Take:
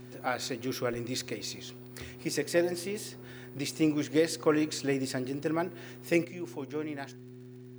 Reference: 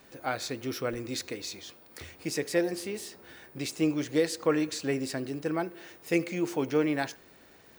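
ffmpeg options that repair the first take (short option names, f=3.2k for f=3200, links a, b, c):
-af "adeclick=t=4,bandreject=f=124.8:t=h:w=4,bandreject=f=249.6:t=h:w=4,bandreject=f=374.4:t=h:w=4,asetnsamples=n=441:p=0,asendcmd='6.25 volume volume 9.5dB',volume=0dB"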